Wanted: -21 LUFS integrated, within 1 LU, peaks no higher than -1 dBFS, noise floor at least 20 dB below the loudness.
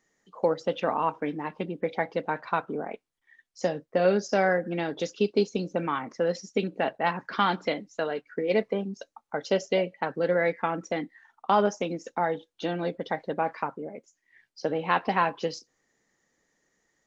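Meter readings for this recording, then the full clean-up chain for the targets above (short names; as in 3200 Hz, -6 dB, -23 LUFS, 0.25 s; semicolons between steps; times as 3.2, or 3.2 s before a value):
loudness -28.5 LUFS; peak -9.5 dBFS; loudness target -21.0 LUFS
-> gain +7.5 dB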